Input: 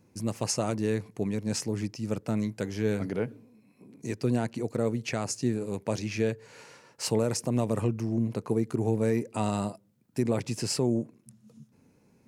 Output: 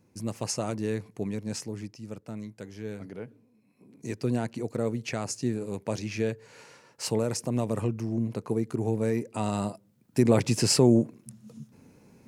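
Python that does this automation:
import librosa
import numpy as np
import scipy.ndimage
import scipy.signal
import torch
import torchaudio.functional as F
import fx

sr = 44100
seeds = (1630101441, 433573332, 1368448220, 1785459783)

y = fx.gain(x, sr, db=fx.line((1.33, -2.0), (2.2, -9.5), (3.3, -9.5), (4.08, -1.0), (9.42, -1.0), (10.39, 7.0)))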